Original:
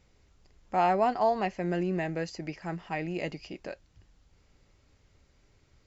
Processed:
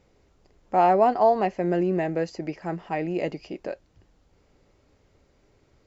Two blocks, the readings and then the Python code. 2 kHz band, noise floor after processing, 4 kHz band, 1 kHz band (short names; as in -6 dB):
+1.0 dB, -64 dBFS, -0.5 dB, +6.0 dB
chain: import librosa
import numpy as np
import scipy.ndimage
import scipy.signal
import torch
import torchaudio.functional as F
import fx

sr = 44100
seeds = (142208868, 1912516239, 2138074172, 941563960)

y = fx.peak_eq(x, sr, hz=460.0, db=9.5, octaves=2.7)
y = y * librosa.db_to_amplitude(-1.5)